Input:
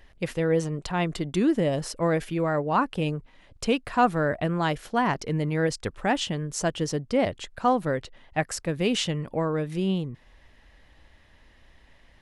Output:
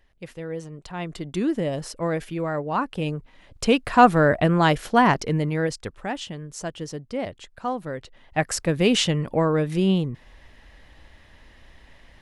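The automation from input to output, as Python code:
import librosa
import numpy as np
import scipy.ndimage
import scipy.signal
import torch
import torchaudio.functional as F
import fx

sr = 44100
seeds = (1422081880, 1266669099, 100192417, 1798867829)

y = fx.gain(x, sr, db=fx.line((0.69, -9.0), (1.38, -1.5), (2.82, -1.5), (3.98, 7.0), (5.06, 7.0), (6.13, -5.5), (7.9, -5.5), (8.54, 5.5)))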